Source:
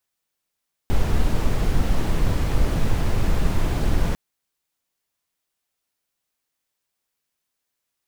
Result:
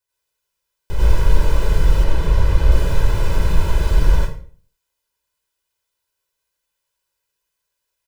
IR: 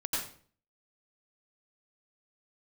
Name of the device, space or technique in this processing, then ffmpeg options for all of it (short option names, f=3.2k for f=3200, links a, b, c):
microphone above a desk: -filter_complex "[0:a]aecho=1:1:2:0.85[a];[1:a]atrim=start_sample=2205[b];[a][b]afir=irnorm=-1:irlink=0,asettb=1/sr,asplit=3[c][d][e];[c]atrim=end=2.044[f];[d]atrim=start=2.04:end=2.72,asetpts=PTS-STARTPTS,afade=t=in:d=0.004:c=qsin,afade=t=out:st=0.676:d=0.004:c=qsin,highshelf=f=6.2k:g=-6.5[g];[e]atrim=start=2.716[h];[f][g]acrossfade=d=0.004:c1=hsin:c2=qsin[i];[i][h]acrossfade=d=0.004:c1=qsin:c2=hsin,volume=-5dB"